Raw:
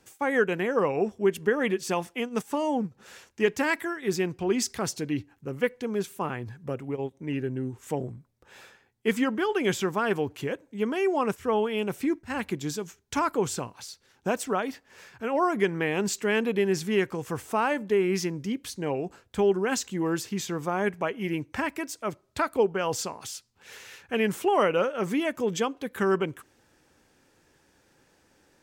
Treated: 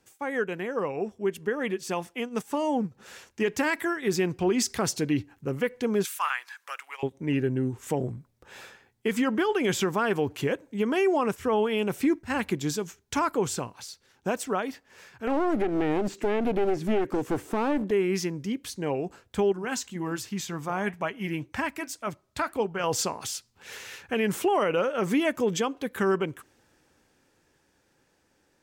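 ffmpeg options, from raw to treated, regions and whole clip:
ffmpeg -i in.wav -filter_complex "[0:a]asettb=1/sr,asplit=3[link_01][link_02][link_03];[link_01]atrim=end=6.054[link_04];[link_02]atrim=start=6.05:end=7.03,asetpts=PTS-STARTPTS,afade=type=in:duration=0.004:curve=qsin,afade=type=out:start_time=0.976:duration=0.004:curve=qsin,highpass=frequency=1200:width=0.5412,highpass=frequency=1200:width=1.3066,acontrast=76[link_05];[link_03]atrim=start=7.026[link_06];[link_04][link_05]acrossfade=duration=0.004:curve1=hsin:curve2=qsin[link_07];[link_07][link_06]acrossfade=duration=0.004:curve1=qsin:curve2=hsin,asettb=1/sr,asplit=3[link_08][link_09][link_10];[link_08]atrim=end=15.274[link_11];[link_09]atrim=start=15.27:end=17.91,asetpts=PTS-STARTPTS,afade=type=in:duration=0.004:curve=qsin,afade=type=out:start_time=2.636:duration=0.004:curve=qsin,equalizer=frequency=310:width_type=o:width=1.4:gain=13,aeval=exprs='clip(val(0),-1,0.0501)':channel_layout=same,acrossover=split=2900[link_12][link_13];[link_13]acompressor=threshold=-44dB:ratio=4:attack=1:release=60[link_14];[link_12][link_14]amix=inputs=2:normalize=0[link_15];[link_10]atrim=start=17.906[link_16];[link_11][link_15]acrossfade=duration=0.004:curve1=hsin:curve2=qsin[link_17];[link_17][link_16]acrossfade=duration=0.004:curve1=qsin:curve2=hsin,asettb=1/sr,asplit=3[link_18][link_19][link_20];[link_18]atrim=end=19.524[link_21];[link_19]atrim=start=19.52:end=22.84,asetpts=PTS-STARTPTS,afade=type=in:duration=0.004:curve=qsin,afade=type=out:start_time=3.316:duration=0.004:curve=qsin,equalizer=frequency=420:width=1.8:gain=-6,flanger=delay=1:depth=4.7:regen=-79:speed=1.9:shape=sinusoidal[link_22];[link_20]atrim=start=22.836[link_23];[link_21][link_22]acrossfade=duration=0.004:curve1=hsin:curve2=qsin[link_24];[link_24][link_23]acrossfade=duration=0.004:curve1=qsin:curve2=hsin,dynaudnorm=framelen=330:gausssize=17:maxgain=12dB,alimiter=limit=-11dB:level=0:latency=1:release=111,volume=-5dB" out.wav

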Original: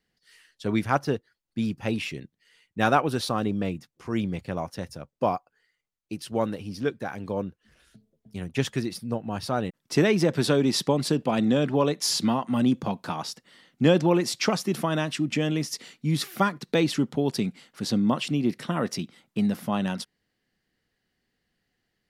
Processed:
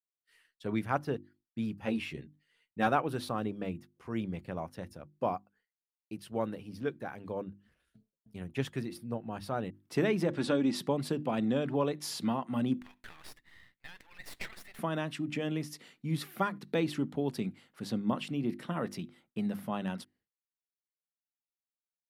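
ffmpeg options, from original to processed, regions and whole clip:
ffmpeg -i in.wav -filter_complex "[0:a]asettb=1/sr,asplit=3[link_01][link_02][link_03];[link_01]atrim=end=1.824[link_04];[link_02]atrim=start=1.82:end=2.87,asetpts=PTS-STARTPTS,afade=type=in:duration=0.004:curve=qsin,afade=type=out:start_time=1.046:duration=0.004:curve=qsin,equalizer=frequency=13000:width_type=o:width=0.36:gain=-4,asplit=2[link_05][link_06];[link_06]adelay=13,volume=-3dB[link_07];[link_05][link_07]amix=inputs=2:normalize=0,atrim=end_sample=46305,volume=8dB,asoftclip=hard,volume=-8dB[link_08];[link_03]atrim=start=2.866[link_09];[link_04][link_08]acrossfade=duration=0.004:curve1=hsin:curve2=qsin[link_10];[link_10][link_09]acrossfade=duration=0.004:curve1=qsin:curve2=hsin,asettb=1/sr,asplit=3[link_11][link_12][link_13];[link_11]atrim=end=10.304[link_14];[link_12]atrim=start=10.3:end=10.75,asetpts=PTS-STARTPTS,afade=type=in:duration=0.004:curve=qsin,afade=type=out:start_time=0.446:duration=0.004:curve=qsin,lowpass=frequency=9200:width=0.5412,lowpass=frequency=9200:width=1.3066,aecho=1:1:3.6:0.46,atrim=end_sample=19845[link_15];[link_13]atrim=start=10.746[link_16];[link_14][link_15]acrossfade=duration=0.004:curve1=hsin:curve2=qsin[link_17];[link_17][link_16]acrossfade=duration=0.004:curve1=qsin:curve2=hsin,asettb=1/sr,asplit=3[link_18][link_19][link_20];[link_18]atrim=end=12.794[link_21];[link_19]atrim=start=12.79:end=14.79,asetpts=PTS-STARTPTS,afade=type=in:duration=0.004:curve=qsin,afade=type=out:start_time=1.996:duration=0.004:curve=qsin,acompressor=threshold=-30dB:ratio=3:attack=3.2:release=140:knee=1:detection=peak,highpass=frequency=1900:width_type=q:width=4.8,aeval=exprs='max(val(0),0)':channel_layout=same[link_22];[link_20]atrim=start=14.786[link_23];[link_21][link_22]acrossfade=duration=0.004:curve1=hsin:curve2=qsin[link_24];[link_24][link_23]acrossfade=duration=0.004:curve1=qsin:curve2=hsin,bandreject=frequency=50:width_type=h:width=6,bandreject=frequency=100:width_type=h:width=6,bandreject=frequency=150:width_type=h:width=6,bandreject=frequency=200:width_type=h:width=6,bandreject=frequency=250:width_type=h:width=6,bandreject=frequency=300:width_type=h:width=6,bandreject=frequency=350:width_type=h:width=6,agate=range=-33dB:threshold=-54dB:ratio=3:detection=peak,equalizer=frequency=5900:width=0.96:gain=-8.5,volume=-7dB" out.wav

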